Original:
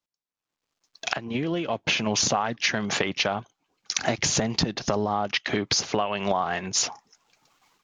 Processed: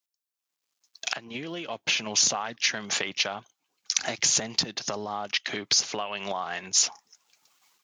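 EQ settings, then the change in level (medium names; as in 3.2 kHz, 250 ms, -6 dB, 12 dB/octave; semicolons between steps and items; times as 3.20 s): high-pass 57 Hz; tilt EQ +3.5 dB/octave; bass shelf 430 Hz +4.5 dB; -6.5 dB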